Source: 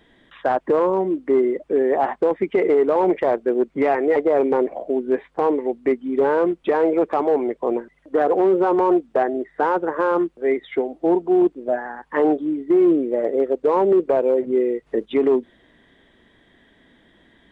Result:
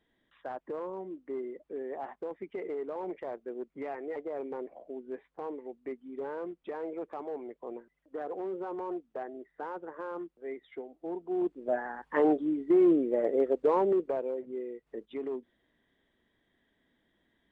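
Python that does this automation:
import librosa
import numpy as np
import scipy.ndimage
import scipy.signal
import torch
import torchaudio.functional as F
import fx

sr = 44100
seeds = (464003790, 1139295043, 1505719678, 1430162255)

y = fx.gain(x, sr, db=fx.line((11.12, -19.5), (11.78, -7.0), (13.68, -7.0), (14.47, -18.5)))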